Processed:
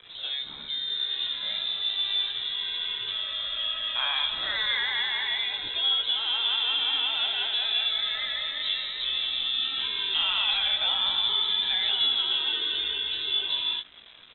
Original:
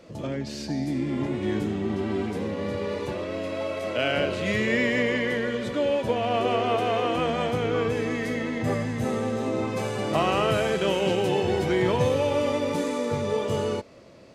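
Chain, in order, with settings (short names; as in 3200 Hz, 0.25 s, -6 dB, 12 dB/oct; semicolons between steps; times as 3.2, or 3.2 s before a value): resonant low shelf 270 Hz -6.5 dB, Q 1.5; in parallel at -2 dB: limiter -19.5 dBFS, peak gain reduction 9 dB; on the sum: bit-crush 7-bit; doubler 18 ms -7 dB; inverted band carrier 3900 Hz; gain -7 dB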